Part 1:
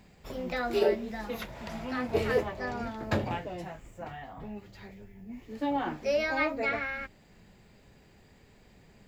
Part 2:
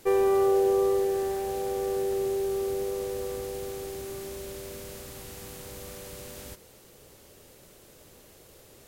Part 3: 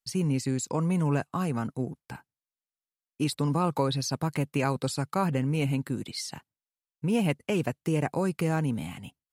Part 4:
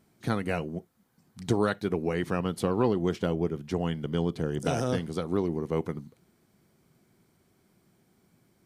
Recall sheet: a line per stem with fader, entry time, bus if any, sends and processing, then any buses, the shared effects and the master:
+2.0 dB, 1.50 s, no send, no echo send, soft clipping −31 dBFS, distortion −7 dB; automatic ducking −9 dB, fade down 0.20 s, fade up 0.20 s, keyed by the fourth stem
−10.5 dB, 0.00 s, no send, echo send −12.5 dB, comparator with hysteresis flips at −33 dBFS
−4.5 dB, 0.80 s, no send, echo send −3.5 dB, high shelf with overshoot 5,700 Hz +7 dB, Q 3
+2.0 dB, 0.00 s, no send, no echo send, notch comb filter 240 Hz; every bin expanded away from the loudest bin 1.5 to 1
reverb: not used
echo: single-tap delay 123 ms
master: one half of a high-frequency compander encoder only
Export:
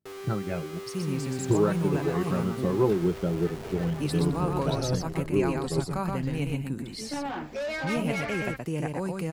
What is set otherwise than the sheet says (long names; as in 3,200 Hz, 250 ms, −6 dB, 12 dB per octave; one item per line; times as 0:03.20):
stem 3: missing high shelf with overshoot 5,700 Hz +7 dB, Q 3
master: missing one half of a high-frequency compander encoder only